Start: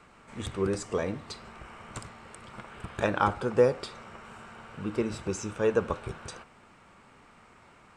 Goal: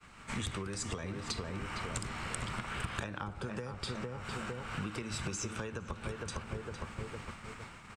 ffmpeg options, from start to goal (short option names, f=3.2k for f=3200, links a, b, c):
-filter_complex "[0:a]asplit=2[a][b];[b]adelay=457,lowpass=f=1.4k:p=1,volume=-7dB,asplit=2[c][d];[d]adelay=457,lowpass=f=1.4k:p=1,volume=0.39,asplit=2[e][f];[f]adelay=457,lowpass=f=1.4k:p=1,volume=0.39,asplit=2[g][h];[h]adelay=457,lowpass=f=1.4k:p=1,volume=0.39,asplit=2[i][j];[j]adelay=457,lowpass=f=1.4k:p=1,volume=0.39[k];[c][e][g][i][k]amix=inputs=5:normalize=0[l];[a][l]amix=inputs=2:normalize=0,acrossover=split=250|580[m][n][o];[m]acompressor=threshold=-42dB:ratio=4[p];[n]acompressor=threshold=-41dB:ratio=4[q];[o]acompressor=threshold=-42dB:ratio=4[r];[p][q][r]amix=inputs=3:normalize=0,agate=range=-33dB:threshold=-48dB:ratio=3:detection=peak,acompressor=threshold=-47dB:ratio=6,equalizer=f=500:w=0.57:g=-10.5,volume=16dB"